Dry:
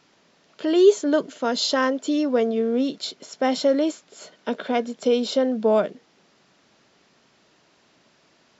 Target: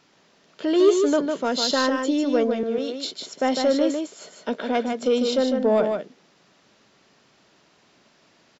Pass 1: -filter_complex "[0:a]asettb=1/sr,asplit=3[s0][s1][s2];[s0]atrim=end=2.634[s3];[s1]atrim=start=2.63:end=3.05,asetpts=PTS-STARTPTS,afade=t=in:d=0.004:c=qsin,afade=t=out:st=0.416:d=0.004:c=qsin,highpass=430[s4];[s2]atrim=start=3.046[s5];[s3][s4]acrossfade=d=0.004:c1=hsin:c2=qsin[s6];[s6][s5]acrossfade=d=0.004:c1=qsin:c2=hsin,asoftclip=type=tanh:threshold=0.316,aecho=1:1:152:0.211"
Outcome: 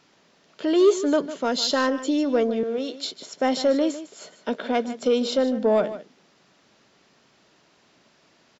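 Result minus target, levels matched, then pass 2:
echo-to-direct -8.5 dB
-filter_complex "[0:a]asettb=1/sr,asplit=3[s0][s1][s2];[s0]atrim=end=2.634[s3];[s1]atrim=start=2.63:end=3.05,asetpts=PTS-STARTPTS,afade=t=in:d=0.004:c=qsin,afade=t=out:st=0.416:d=0.004:c=qsin,highpass=430[s4];[s2]atrim=start=3.046[s5];[s3][s4]acrossfade=d=0.004:c1=hsin:c2=qsin[s6];[s6][s5]acrossfade=d=0.004:c1=qsin:c2=hsin,asoftclip=type=tanh:threshold=0.316,aecho=1:1:152:0.562"

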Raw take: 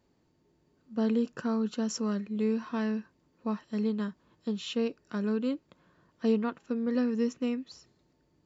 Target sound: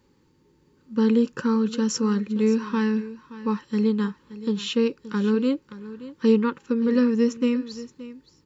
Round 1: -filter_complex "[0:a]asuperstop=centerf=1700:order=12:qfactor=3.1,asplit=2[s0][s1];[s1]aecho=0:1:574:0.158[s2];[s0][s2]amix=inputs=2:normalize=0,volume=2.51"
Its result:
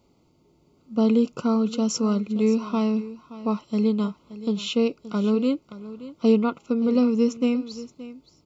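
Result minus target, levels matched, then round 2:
2 kHz band -5.0 dB
-filter_complex "[0:a]asuperstop=centerf=670:order=12:qfactor=3.1,asplit=2[s0][s1];[s1]aecho=0:1:574:0.158[s2];[s0][s2]amix=inputs=2:normalize=0,volume=2.51"

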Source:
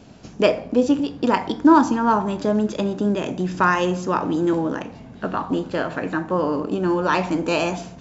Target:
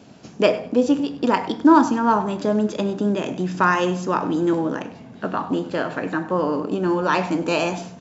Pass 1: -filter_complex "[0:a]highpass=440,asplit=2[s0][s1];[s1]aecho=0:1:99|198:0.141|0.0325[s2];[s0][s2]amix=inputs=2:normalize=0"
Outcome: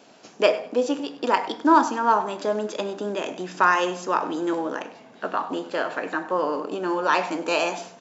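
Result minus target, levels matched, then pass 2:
125 Hz band -11.5 dB
-filter_complex "[0:a]highpass=120,asplit=2[s0][s1];[s1]aecho=0:1:99|198:0.141|0.0325[s2];[s0][s2]amix=inputs=2:normalize=0"

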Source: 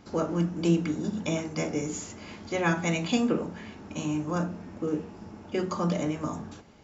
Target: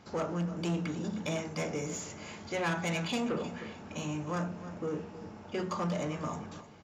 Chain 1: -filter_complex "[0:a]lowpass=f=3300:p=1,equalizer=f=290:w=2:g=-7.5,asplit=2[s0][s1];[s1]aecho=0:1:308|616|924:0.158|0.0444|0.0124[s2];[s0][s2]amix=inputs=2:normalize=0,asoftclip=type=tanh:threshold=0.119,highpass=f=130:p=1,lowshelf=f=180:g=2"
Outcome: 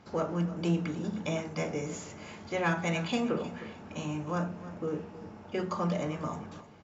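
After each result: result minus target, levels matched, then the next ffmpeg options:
saturation: distortion -10 dB; 8 kHz band -5.0 dB
-filter_complex "[0:a]lowpass=f=3300:p=1,equalizer=f=290:w=2:g=-7.5,asplit=2[s0][s1];[s1]aecho=0:1:308|616|924:0.158|0.0444|0.0124[s2];[s0][s2]amix=inputs=2:normalize=0,asoftclip=type=tanh:threshold=0.0473,highpass=f=130:p=1,lowshelf=f=180:g=2"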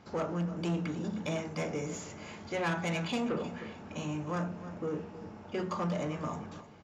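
8 kHz band -4.0 dB
-filter_complex "[0:a]lowpass=f=7500:p=1,equalizer=f=290:w=2:g=-7.5,asplit=2[s0][s1];[s1]aecho=0:1:308|616|924:0.158|0.0444|0.0124[s2];[s0][s2]amix=inputs=2:normalize=0,asoftclip=type=tanh:threshold=0.0473,highpass=f=130:p=1,lowshelf=f=180:g=2"

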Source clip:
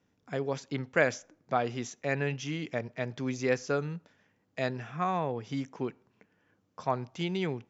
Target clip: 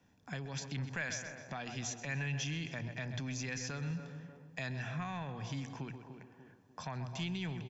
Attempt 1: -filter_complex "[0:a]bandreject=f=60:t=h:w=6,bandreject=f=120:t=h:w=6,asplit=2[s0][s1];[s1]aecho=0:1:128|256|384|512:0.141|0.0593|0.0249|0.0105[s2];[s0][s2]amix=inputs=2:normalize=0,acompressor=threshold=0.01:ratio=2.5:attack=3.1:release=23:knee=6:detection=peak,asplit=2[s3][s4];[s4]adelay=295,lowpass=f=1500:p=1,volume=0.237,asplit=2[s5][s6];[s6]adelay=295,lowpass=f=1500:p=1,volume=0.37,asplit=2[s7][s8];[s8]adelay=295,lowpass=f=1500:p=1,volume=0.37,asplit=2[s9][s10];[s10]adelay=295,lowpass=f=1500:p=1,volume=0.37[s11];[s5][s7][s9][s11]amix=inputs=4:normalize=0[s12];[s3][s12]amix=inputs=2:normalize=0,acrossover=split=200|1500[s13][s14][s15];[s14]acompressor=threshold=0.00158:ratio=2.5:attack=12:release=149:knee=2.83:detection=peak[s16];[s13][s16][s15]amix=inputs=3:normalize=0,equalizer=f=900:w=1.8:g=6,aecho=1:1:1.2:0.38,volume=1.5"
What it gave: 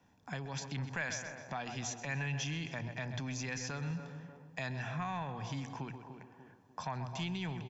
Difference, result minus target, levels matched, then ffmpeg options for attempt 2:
1 kHz band +4.0 dB
-filter_complex "[0:a]bandreject=f=60:t=h:w=6,bandreject=f=120:t=h:w=6,asplit=2[s0][s1];[s1]aecho=0:1:128|256|384|512:0.141|0.0593|0.0249|0.0105[s2];[s0][s2]amix=inputs=2:normalize=0,acompressor=threshold=0.01:ratio=2.5:attack=3.1:release=23:knee=6:detection=peak,asplit=2[s3][s4];[s4]adelay=295,lowpass=f=1500:p=1,volume=0.237,asplit=2[s5][s6];[s6]adelay=295,lowpass=f=1500:p=1,volume=0.37,asplit=2[s7][s8];[s8]adelay=295,lowpass=f=1500:p=1,volume=0.37,asplit=2[s9][s10];[s10]adelay=295,lowpass=f=1500:p=1,volume=0.37[s11];[s5][s7][s9][s11]amix=inputs=4:normalize=0[s12];[s3][s12]amix=inputs=2:normalize=0,acrossover=split=200|1500[s13][s14][s15];[s14]acompressor=threshold=0.00158:ratio=2.5:attack=12:release=149:knee=2.83:detection=peak[s16];[s13][s16][s15]amix=inputs=3:normalize=0,aecho=1:1:1.2:0.38,volume=1.5"

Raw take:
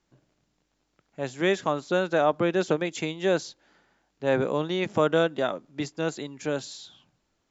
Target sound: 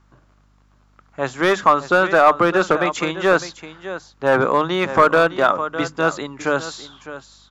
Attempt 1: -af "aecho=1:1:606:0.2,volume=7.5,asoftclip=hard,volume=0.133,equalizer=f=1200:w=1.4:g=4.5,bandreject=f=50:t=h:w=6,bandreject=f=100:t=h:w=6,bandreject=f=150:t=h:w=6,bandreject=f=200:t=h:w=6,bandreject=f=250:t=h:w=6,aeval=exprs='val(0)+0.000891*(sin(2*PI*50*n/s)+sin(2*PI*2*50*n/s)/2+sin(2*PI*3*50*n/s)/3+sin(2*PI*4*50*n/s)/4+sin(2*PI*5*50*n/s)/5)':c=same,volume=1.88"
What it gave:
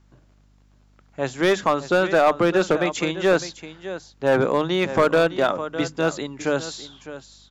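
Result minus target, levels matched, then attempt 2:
1 kHz band -4.0 dB
-af "aecho=1:1:606:0.2,volume=7.5,asoftclip=hard,volume=0.133,equalizer=f=1200:w=1.4:g=14.5,bandreject=f=50:t=h:w=6,bandreject=f=100:t=h:w=6,bandreject=f=150:t=h:w=6,bandreject=f=200:t=h:w=6,bandreject=f=250:t=h:w=6,aeval=exprs='val(0)+0.000891*(sin(2*PI*50*n/s)+sin(2*PI*2*50*n/s)/2+sin(2*PI*3*50*n/s)/3+sin(2*PI*4*50*n/s)/4+sin(2*PI*5*50*n/s)/5)':c=same,volume=1.88"

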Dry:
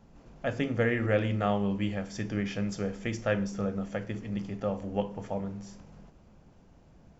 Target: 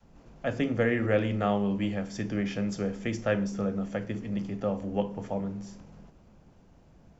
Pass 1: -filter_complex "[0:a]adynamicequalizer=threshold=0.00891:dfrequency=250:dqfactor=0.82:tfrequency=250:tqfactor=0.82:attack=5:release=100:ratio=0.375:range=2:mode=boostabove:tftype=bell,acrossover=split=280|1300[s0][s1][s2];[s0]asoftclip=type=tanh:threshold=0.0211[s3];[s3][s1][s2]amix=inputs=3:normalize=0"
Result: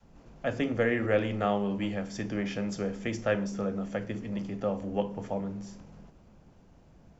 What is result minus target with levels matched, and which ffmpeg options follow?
saturation: distortion +7 dB
-filter_complex "[0:a]adynamicequalizer=threshold=0.00891:dfrequency=250:dqfactor=0.82:tfrequency=250:tqfactor=0.82:attack=5:release=100:ratio=0.375:range=2:mode=boostabove:tftype=bell,acrossover=split=280|1300[s0][s1][s2];[s0]asoftclip=type=tanh:threshold=0.0473[s3];[s3][s1][s2]amix=inputs=3:normalize=0"

